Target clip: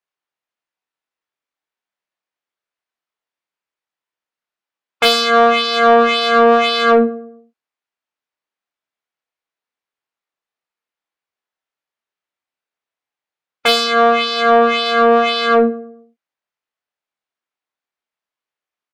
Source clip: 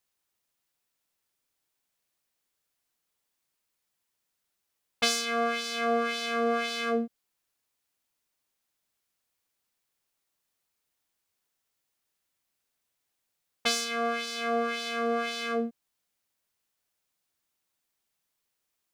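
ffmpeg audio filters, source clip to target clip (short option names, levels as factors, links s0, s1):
-filter_complex "[0:a]afftdn=nr=21:nf=-43,aemphasis=mode=reproduction:type=50fm,asplit=2[s0][s1];[s1]adelay=108,lowpass=f=1300:p=1,volume=0.15,asplit=2[s2][s3];[s3]adelay=108,lowpass=f=1300:p=1,volume=0.42,asplit=2[s4][s5];[s5]adelay=108,lowpass=f=1300:p=1,volume=0.42,asplit=2[s6][s7];[s7]adelay=108,lowpass=f=1300:p=1,volume=0.42[s8];[s0][s2][s4][s6][s8]amix=inputs=5:normalize=0,asplit=2[s9][s10];[s10]adynamicsmooth=sensitivity=4.5:basefreq=3900,volume=0.75[s11];[s9][s11]amix=inputs=2:normalize=0,asplit=2[s12][s13];[s13]adelay=26,volume=0.631[s14];[s12][s14]amix=inputs=2:normalize=0,asplit=2[s15][s16];[s16]highpass=f=720:p=1,volume=7.94,asoftclip=type=tanh:threshold=0.631[s17];[s15][s17]amix=inputs=2:normalize=0,lowpass=f=7500:p=1,volume=0.501,volume=1.5"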